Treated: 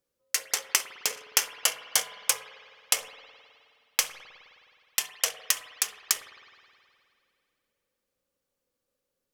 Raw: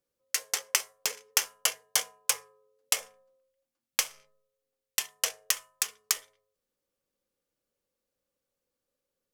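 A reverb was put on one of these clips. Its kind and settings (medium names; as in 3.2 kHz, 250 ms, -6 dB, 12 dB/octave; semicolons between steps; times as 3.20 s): spring tank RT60 2.4 s, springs 52 ms, chirp 40 ms, DRR 11 dB; trim +2 dB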